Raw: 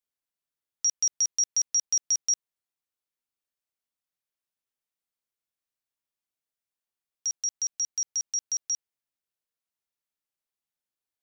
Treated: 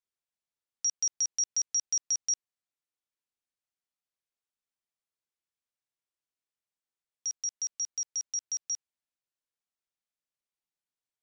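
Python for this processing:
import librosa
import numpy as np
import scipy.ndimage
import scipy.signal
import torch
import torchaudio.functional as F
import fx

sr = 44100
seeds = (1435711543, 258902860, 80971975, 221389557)

y = scipy.signal.sosfilt(scipy.signal.butter(4, 9400.0, 'lowpass', fs=sr, output='sos'), x)
y = F.gain(torch.from_numpy(y), -4.0).numpy()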